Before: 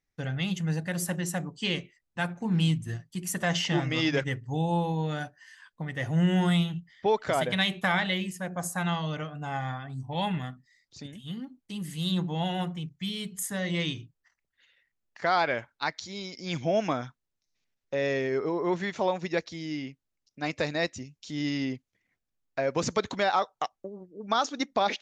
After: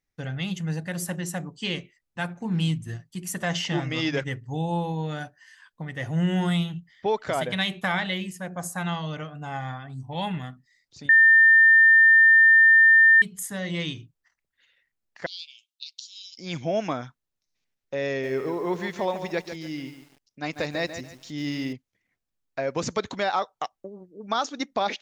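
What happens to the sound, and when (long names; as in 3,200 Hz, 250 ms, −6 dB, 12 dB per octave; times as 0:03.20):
0:11.09–0:13.22: beep over 1,800 Hz −11.5 dBFS
0:15.26–0:16.38: Butterworth high-pass 2,700 Hz 96 dB per octave
0:18.09–0:21.73: feedback echo at a low word length 144 ms, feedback 35%, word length 8 bits, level −9.5 dB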